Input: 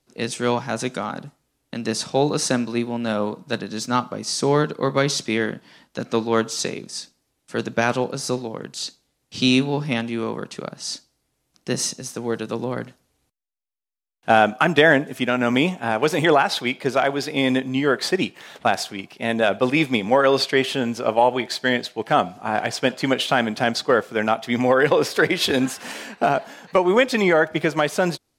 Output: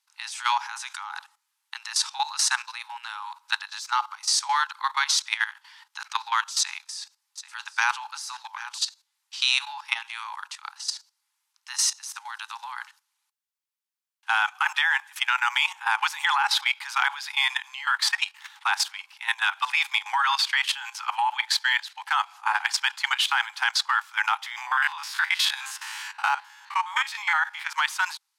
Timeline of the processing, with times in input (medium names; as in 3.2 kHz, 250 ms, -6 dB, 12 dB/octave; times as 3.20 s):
6.57–8.78 s: delay 785 ms -16 dB
17.87–21.86 s: phase dispersion lows, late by 42 ms, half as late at 320 Hz
24.46–27.73 s: spectrogram pixelated in time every 50 ms
whole clip: Chebyshev high-pass 830 Hz, order 8; level held to a coarse grid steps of 14 dB; trim +6 dB